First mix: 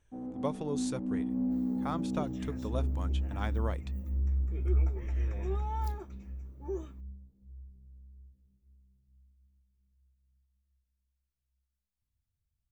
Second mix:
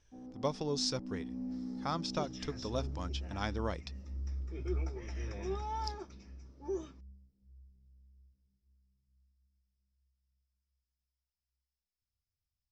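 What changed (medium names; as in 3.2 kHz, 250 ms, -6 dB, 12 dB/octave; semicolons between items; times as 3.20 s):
first sound -9.0 dB; master: add resonant low-pass 5.2 kHz, resonance Q 9.6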